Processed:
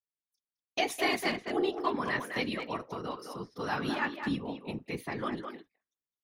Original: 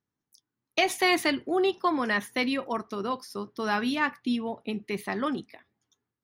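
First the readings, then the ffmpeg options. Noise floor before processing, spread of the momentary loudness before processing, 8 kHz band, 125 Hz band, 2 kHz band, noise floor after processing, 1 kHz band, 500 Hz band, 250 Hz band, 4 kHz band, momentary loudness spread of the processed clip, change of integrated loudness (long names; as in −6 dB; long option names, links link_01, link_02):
below −85 dBFS, 10 LU, −6.0 dB, +2.0 dB, −5.0 dB, below −85 dBFS, −5.0 dB, −5.0 dB, −6.0 dB, −5.5 dB, 11 LU, −5.5 dB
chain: -filter_complex "[0:a]afftfilt=real='hypot(re,im)*cos(2*PI*random(0))':imag='hypot(re,im)*sin(2*PI*random(1))':win_size=512:overlap=0.75,asplit=2[link_01][link_02];[link_02]adelay=210,highpass=300,lowpass=3400,asoftclip=type=hard:threshold=-25dB,volume=-6dB[link_03];[link_01][link_03]amix=inputs=2:normalize=0,agate=range=-19dB:threshold=-54dB:ratio=16:detection=peak"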